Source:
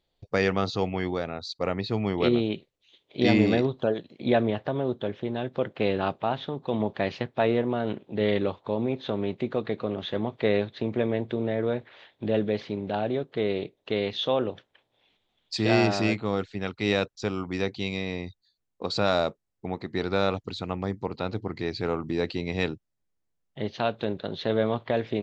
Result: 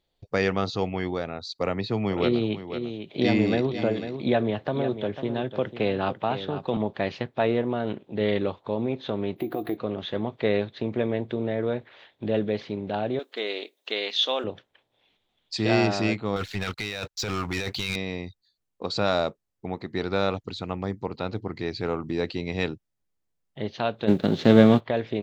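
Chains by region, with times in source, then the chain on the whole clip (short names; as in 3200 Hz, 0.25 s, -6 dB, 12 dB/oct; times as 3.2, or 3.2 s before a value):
1.58–6.77 echo 0.497 s -12 dB + three-band squash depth 40%
9.36–9.77 compressor 2.5:1, threshold -32 dBFS + small resonant body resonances 330/710 Hz, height 17 dB, ringing for 85 ms + careless resampling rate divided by 3×, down none, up hold
13.19–14.44 brick-wall FIR high-pass 210 Hz + tilt +4 dB/oct
16.36–17.96 bell 290 Hz -12 dB 2.9 oct + negative-ratio compressor -38 dBFS + sample leveller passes 3
24.07–24.79 spectral whitening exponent 0.6 + bell 230 Hz +14.5 dB 2.5 oct + notch 990 Hz, Q 9.7
whole clip: dry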